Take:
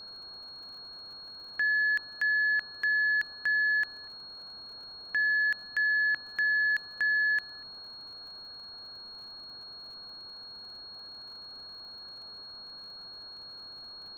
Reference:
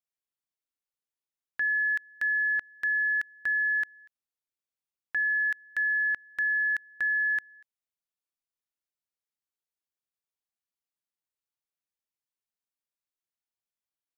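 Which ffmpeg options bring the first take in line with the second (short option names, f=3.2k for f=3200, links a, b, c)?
-af "adeclick=t=4,bandreject=f=4.3k:w=30,afwtdn=0.0045,asetnsamples=n=441:p=0,asendcmd='8.16 volume volume -4.5dB',volume=0dB"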